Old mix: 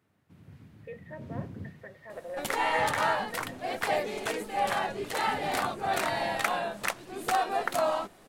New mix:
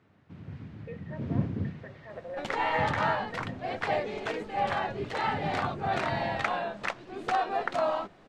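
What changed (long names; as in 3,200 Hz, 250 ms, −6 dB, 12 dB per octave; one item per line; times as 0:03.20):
first sound +9.0 dB
master: add high-frequency loss of the air 150 metres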